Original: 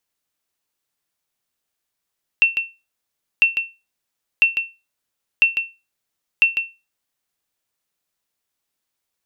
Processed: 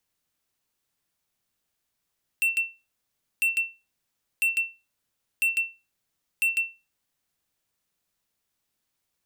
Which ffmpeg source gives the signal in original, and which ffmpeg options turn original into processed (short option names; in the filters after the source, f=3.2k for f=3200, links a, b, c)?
-f lavfi -i "aevalsrc='0.531*(sin(2*PI*2700*mod(t,1))*exp(-6.91*mod(t,1)/0.26)+0.398*sin(2*PI*2700*max(mod(t,1)-0.15,0))*exp(-6.91*max(mod(t,1)-0.15,0)/0.26))':d=5:s=44100"
-filter_complex "[0:a]acrossover=split=250|850[a][b][c];[a]acontrast=32[d];[d][b][c]amix=inputs=3:normalize=0,asoftclip=type=hard:threshold=-21.5dB"